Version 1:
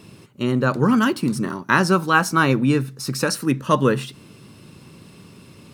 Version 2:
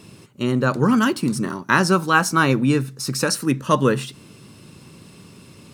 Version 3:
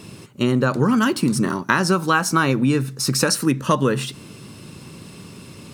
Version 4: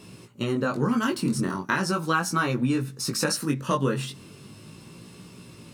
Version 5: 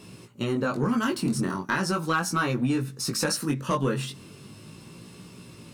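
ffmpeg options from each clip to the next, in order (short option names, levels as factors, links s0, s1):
-af "equalizer=f=7500:w=1:g=4"
-af "acompressor=threshold=0.112:ratio=6,volume=1.78"
-af "flanger=delay=16.5:depth=5.5:speed=0.38,volume=0.668"
-af "asoftclip=type=tanh:threshold=0.188"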